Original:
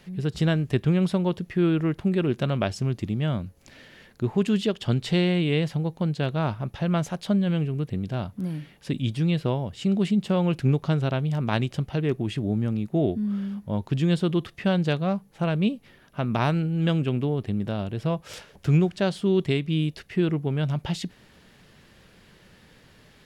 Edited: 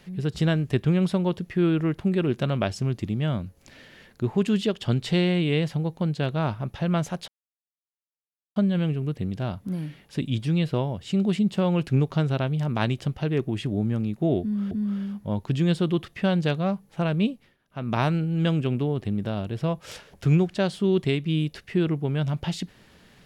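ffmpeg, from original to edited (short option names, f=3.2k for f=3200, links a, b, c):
-filter_complex "[0:a]asplit=5[a][b][c][d][e];[a]atrim=end=7.28,asetpts=PTS-STARTPTS,afade=t=out:st=7.276:d=0.004:c=hsin,apad=pad_dur=1.28[f];[b]atrim=start=7.28:end=13.432,asetpts=PTS-STARTPTS,afade=t=in:d=0.004:c=hsin[g];[c]atrim=start=13.128:end=15.99,asetpts=PTS-STARTPTS,afade=t=out:st=2.562:d=0.3:silence=0.158489[h];[d]atrim=start=15.99:end=16.09,asetpts=PTS-STARTPTS,volume=-16dB[i];[e]atrim=start=16.09,asetpts=PTS-STARTPTS,afade=t=in:d=0.3:silence=0.158489[j];[f][g]concat=n=2:v=0:a=1[k];[h][i][j]concat=n=3:v=0:a=1[l];[k][l]acrossfade=d=0.004:c1=hsin:c2=hsin"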